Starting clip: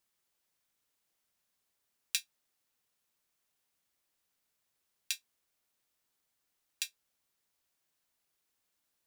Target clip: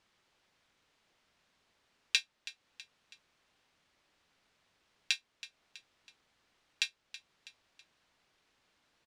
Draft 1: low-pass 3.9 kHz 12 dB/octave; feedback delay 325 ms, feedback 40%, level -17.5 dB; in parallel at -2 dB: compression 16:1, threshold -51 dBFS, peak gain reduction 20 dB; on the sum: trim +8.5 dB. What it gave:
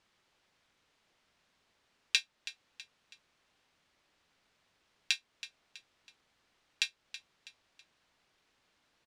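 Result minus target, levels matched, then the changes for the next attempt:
compression: peak gain reduction -8.5 dB
change: compression 16:1, threshold -60 dBFS, peak gain reduction 28.5 dB

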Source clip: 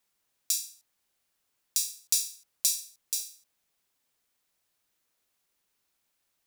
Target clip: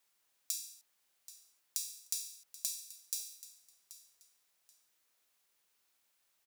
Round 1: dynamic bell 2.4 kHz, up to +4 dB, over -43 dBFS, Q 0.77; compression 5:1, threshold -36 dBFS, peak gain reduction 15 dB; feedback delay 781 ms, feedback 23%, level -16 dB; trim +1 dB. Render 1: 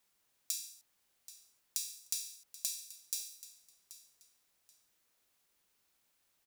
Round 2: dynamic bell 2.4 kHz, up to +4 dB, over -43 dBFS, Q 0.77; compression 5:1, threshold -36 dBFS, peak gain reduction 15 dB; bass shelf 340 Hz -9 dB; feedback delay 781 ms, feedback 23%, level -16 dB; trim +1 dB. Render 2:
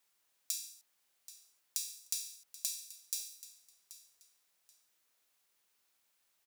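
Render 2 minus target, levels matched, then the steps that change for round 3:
2 kHz band +3.0 dB
remove: dynamic bell 2.4 kHz, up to +4 dB, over -43 dBFS, Q 0.77

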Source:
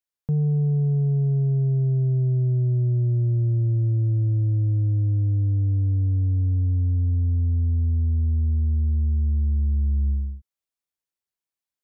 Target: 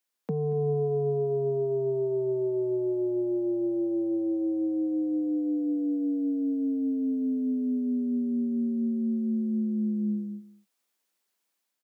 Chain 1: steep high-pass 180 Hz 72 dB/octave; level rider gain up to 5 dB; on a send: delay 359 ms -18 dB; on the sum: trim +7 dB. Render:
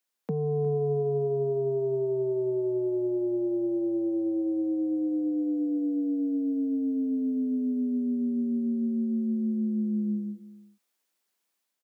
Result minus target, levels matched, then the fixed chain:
echo 127 ms late
steep high-pass 180 Hz 72 dB/octave; level rider gain up to 5 dB; on a send: delay 232 ms -18 dB; on the sum: trim +7 dB

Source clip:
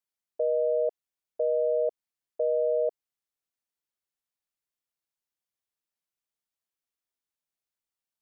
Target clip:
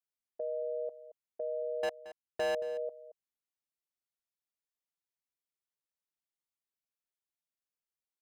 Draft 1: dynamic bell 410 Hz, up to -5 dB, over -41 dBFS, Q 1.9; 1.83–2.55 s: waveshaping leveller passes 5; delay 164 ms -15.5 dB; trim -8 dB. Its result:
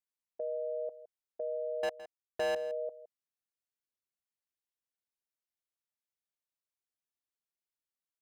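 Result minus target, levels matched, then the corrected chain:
echo 61 ms early
dynamic bell 410 Hz, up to -5 dB, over -41 dBFS, Q 1.9; 1.83–2.55 s: waveshaping leveller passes 5; delay 225 ms -15.5 dB; trim -8 dB

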